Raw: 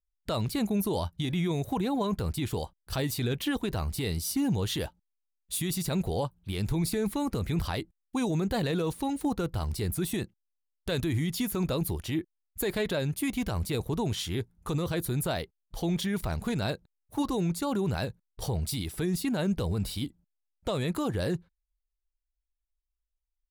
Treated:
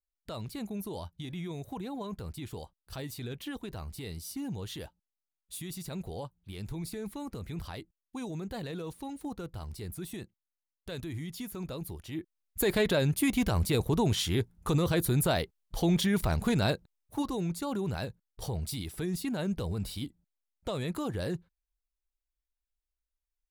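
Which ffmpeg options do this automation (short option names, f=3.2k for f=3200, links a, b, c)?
-af "volume=3dB,afade=t=in:st=12.1:d=0.59:silence=0.237137,afade=t=out:st=16.68:d=0.6:silence=0.446684"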